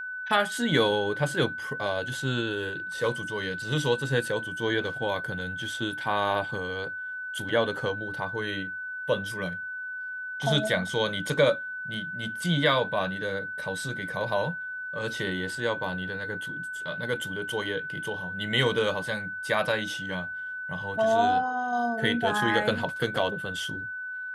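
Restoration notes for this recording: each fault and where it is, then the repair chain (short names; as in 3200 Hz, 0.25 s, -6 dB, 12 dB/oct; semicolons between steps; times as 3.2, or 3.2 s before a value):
tone 1500 Hz -33 dBFS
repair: notch 1500 Hz, Q 30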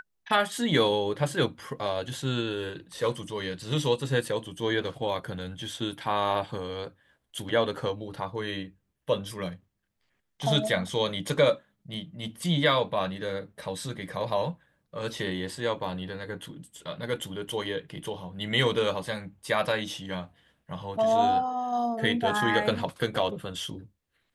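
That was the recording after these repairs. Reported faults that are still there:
none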